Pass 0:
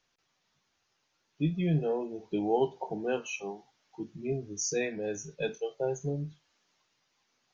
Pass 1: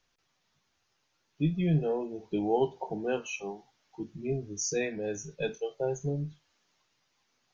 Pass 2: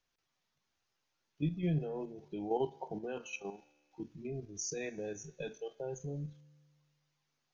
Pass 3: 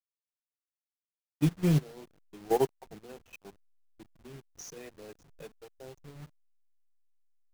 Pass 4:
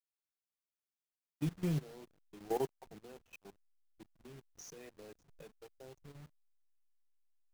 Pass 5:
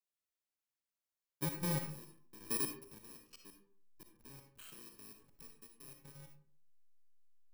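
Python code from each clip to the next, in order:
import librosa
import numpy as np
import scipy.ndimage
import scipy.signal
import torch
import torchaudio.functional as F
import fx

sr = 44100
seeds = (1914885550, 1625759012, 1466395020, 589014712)

y1 = fx.low_shelf(x, sr, hz=72.0, db=9.0)
y2 = fx.level_steps(y1, sr, step_db=9)
y2 = fx.comb_fb(y2, sr, f0_hz=74.0, decay_s=1.7, harmonics='all', damping=0.0, mix_pct=40)
y2 = y2 * librosa.db_to_amplitude(1.0)
y3 = fx.delta_hold(y2, sr, step_db=-39.5)
y3 = fx.upward_expand(y3, sr, threshold_db=-47.0, expansion=2.5)
y3 = y3 * librosa.db_to_amplitude(9.0)
y4 = fx.level_steps(y3, sr, step_db=10)
y4 = y4 * librosa.db_to_amplitude(-2.0)
y5 = fx.bit_reversed(y4, sr, seeds[0], block=64)
y5 = fx.rev_freeverb(y5, sr, rt60_s=0.54, hf_ratio=0.5, predelay_ms=15, drr_db=4.0)
y5 = y5 * librosa.db_to_amplitude(-2.5)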